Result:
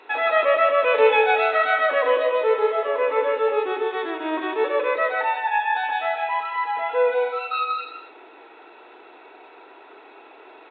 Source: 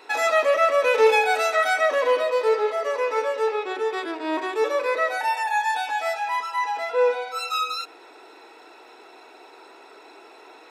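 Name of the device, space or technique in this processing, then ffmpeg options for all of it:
Bluetooth headset: -filter_complex "[0:a]asettb=1/sr,asplit=3[a][b][c];[a]atrim=end=2.874[d];[b]atrim=start=2.87:end=3.72,asetpts=PTS-STARTPTS,afade=t=in:d=0.004:c=qsin,afade=t=out:st=0.846:d=0.004:c=qsin,adynamicequalizer=threshold=0.0141:dfrequency=240:dqfactor=0.85:tfrequency=240:tqfactor=0.85:attack=5:release=100:ratio=0.375:range=3:mode=boostabove:tftype=bell[e];[c]atrim=start=3.716[f];[d][e]acrossfade=d=0.004:c1=hsin:c2=qsin[g];[g][f]acrossfade=d=0.004:c1=qsin:c2=hsin,highpass=f=190:w=0.5412,highpass=f=190:w=1.3066,aecho=1:1:92|155|246|267:0.15|0.501|0.2|0.158,aresample=8000,aresample=44100" -ar 16000 -c:a sbc -b:a 64k

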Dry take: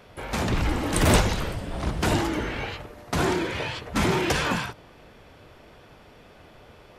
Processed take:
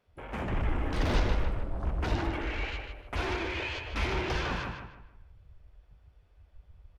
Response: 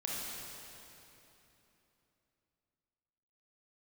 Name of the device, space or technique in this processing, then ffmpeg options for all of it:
saturation between pre-emphasis and de-emphasis: -filter_complex "[0:a]asettb=1/sr,asplit=3[a][b][c];[a]atrim=end=2.334[d];[b]atrim=start=2.33:end=4.13,asetpts=PTS-STARTPTS,afade=t=in:d=0.004:c=qsin,afade=t=out:st=1.796:d=0.004:c=qsin,equalizer=f=160:t=o:w=0.67:g=-11,equalizer=f=2.5k:t=o:w=0.67:g=7,equalizer=f=10k:t=o:w=0.67:g=6[e];[c]atrim=start=4.126[f];[d][e]acrossfade=d=0.004:c1=hsin:c2=qsin[g];[g][f]acrossfade=d=0.004:c1=qsin:c2=hsin,highshelf=f=3.3k:g=11.5,asoftclip=type=tanh:threshold=-14.5dB,highshelf=f=3.3k:g=-11.5,afwtdn=0.0141,asubboost=boost=6:cutoff=69,asplit=2[h][i];[i]adelay=153,lowpass=f=3.4k:p=1,volume=-4.5dB,asplit=2[j][k];[k]adelay=153,lowpass=f=3.4k:p=1,volume=0.35,asplit=2[l][m];[m]adelay=153,lowpass=f=3.4k:p=1,volume=0.35,asplit=2[n][o];[o]adelay=153,lowpass=f=3.4k:p=1,volume=0.35[p];[h][j][l][n][p]amix=inputs=5:normalize=0,volume=-7.5dB"

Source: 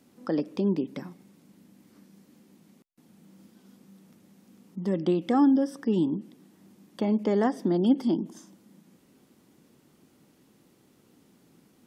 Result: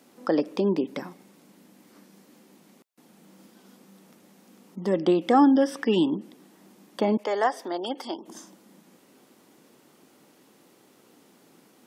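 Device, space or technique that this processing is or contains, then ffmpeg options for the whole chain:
filter by subtraction: -filter_complex "[0:a]asettb=1/sr,asplit=3[a][b][c];[a]atrim=end=5.564[d];[b]atrim=start=5.56:end=6.19,asetpts=PTS-STARTPTS,afade=t=in:d=0.004:c=qsin,afade=t=out:st=0.626:d=0.004:c=qsin,equalizer=f=2.5k:w=1.2:g=10.5[e];[c]atrim=start=6.186[f];[d][e]acrossfade=d=0.004:c1=hsin:c2=qsin[g];[g][f]acrossfade=d=0.004:c1=qsin:c2=hsin,asettb=1/sr,asplit=3[h][i][j];[h]atrim=end=7.174[k];[i]atrim=start=7.17:end=8.28,asetpts=PTS-STARTPTS,afade=t=in:d=0.004:c=qsin,afade=t=out:st=1.106:d=0.004:c=qsin,highpass=650[l];[j]atrim=start=8.276[m];[k][l]acrossfade=d=0.004:c1=hsin:c2=qsin[n];[n][m]acrossfade=d=0.004:c1=qsin:c2=hsin,asplit=2[o][p];[p]lowpass=640,volume=-1[q];[o][q]amix=inputs=2:normalize=0,volume=6dB"

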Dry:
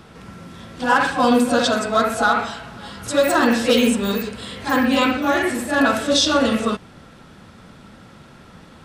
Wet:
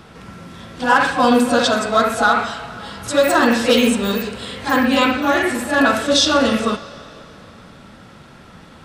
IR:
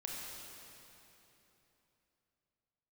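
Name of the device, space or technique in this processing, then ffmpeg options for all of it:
filtered reverb send: -filter_complex "[0:a]asplit=2[a][b];[b]highpass=430,lowpass=7.1k[c];[1:a]atrim=start_sample=2205[d];[c][d]afir=irnorm=-1:irlink=0,volume=-11.5dB[e];[a][e]amix=inputs=2:normalize=0,volume=1.5dB"

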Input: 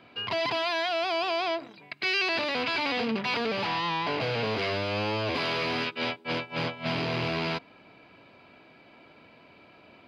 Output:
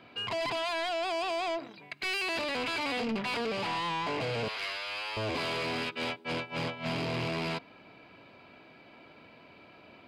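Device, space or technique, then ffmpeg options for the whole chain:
saturation between pre-emphasis and de-emphasis: -filter_complex "[0:a]asettb=1/sr,asplit=3[a][b][c];[a]atrim=end=4.484[d];[b]atrim=start=4.48:end=5.17,asetpts=PTS-STARTPTS,afade=t=in:d=0.004:c=qsin,afade=t=out:st=0.686:d=0.004:c=qsin,highpass=1.2k[e];[c]atrim=start=5.166[f];[d][e]acrossfade=d=0.004:c1=hsin:c2=qsin[g];[g][f]acrossfade=d=0.004:c1=qsin:c2=hsin,highshelf=f=4.9k:g=11,asoftclip=type=tanh:threshold=-26.5dB,highshelf=f=4.9k:g=-11"

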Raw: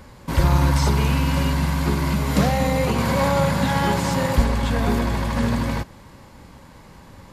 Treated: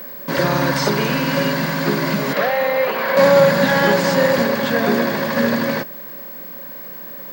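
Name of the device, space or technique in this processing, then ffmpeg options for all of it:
old television with a line whistle: -filter_complex "[0:a]asettb=1/sr,asplit=3[a][b][c];[a]atrim=end=2.334[d];[b]atrim=start=2.33:end=3.17,asetpts=PTS-STARTPTS,afade=t=in:d=0.004:c=qsin,afade=t=out:st=0.836:d=0.004:c=qsin,acrossover=split=470 3600:gain=0.141 1 0.158[e][f][g];[e][f][g]amix=inputs=3:normalize=0[h];[c]atrim=start=3.166[i];[d][h]acrossfade=d=0.004:c1=hsin:c2=qsin[j];[j][i]acrossfade=d=0.004:c1=qsin:c2=hsin,highpass=f=170:w=0.5412,highpass=f=170:w=1.3066,equalizer=f=400:t=q:w=4:g=3,equalizer=f=570:t=q:w=4:g=8,equalizer=f=850:t=q:w=4:g=-4,equalizer=f=1.7k:t=q:w=4:g=8,equalizer=f=4.7k:t=q:w=4:g=4,equalizer=f=7.7k:t=q:w=4:g=-5,lowpass=f=8.9k:w=0.5412,lowpass=f=8.9k:w=1.3066,aeval=exprs='val(0)+0.0178*sin(2*PI*15734*n/s)':c=same,volume=4dB"

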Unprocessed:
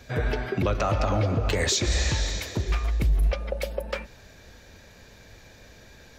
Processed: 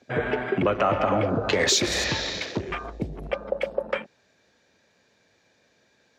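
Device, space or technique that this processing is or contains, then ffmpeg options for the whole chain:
over-cleaned archive recording: -af "highpass=190,lowpass=7.9k,afwtdn=0.0112,volume=4.5dB"

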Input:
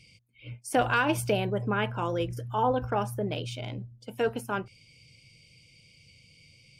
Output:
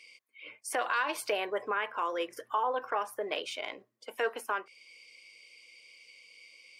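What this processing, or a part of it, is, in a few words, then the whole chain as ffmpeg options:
laptop speaker: -filter_complex "[0:a]asettb=1/sr,asplit=3[a][b][c];[a]atrim=end=0.804[d];[b]atrim=start=0.8:end=1.29,asetpts=PTS-STARTPTS,afade=t=in:d=0.004:c=qsin,afade=t=out:st=0.486:d=0.004:c=qsin,equalizer=f=4.2k:t=o:w=0.42:g=12[e];[c]atrim=start=1.286[f];[d][e]acrossfade=d=0.004:c1=hsin:c2=qsin[g];[g][f]acrossfade=d=0.004:c1=qsin:c2=hsin,highpass=f=380:w=0.5412,highpass=f=380:w=1.3066,equalizer=f=1.1k:t=o:w=0.26:g=11.5,equalizer=f=1.9k:t=o:w=0.57:g=10,alimiter=limit=-20dB:level=0:latency=1:release=315"

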